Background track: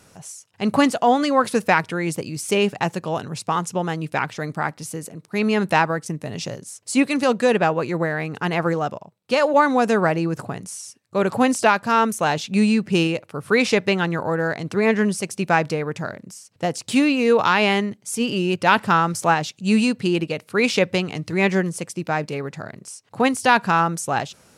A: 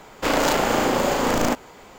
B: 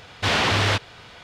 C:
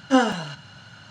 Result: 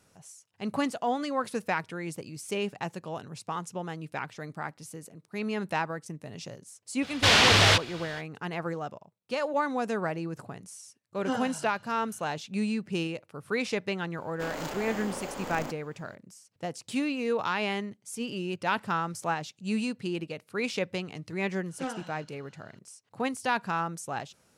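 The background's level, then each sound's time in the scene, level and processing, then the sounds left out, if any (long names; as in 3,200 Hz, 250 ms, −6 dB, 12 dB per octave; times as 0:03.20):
background track −12 dB
0:07.00: mix in B −2 dB, fades 0.05 s + high-shelf EQ 2,600 Hz +8.5 dB
0:11.15: mix in C −13.5 dB
0:14.17: mix in A −17 dB
0:21.69: mix in C −17 dB + highs frequency-modulated by the lows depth 0.17 ms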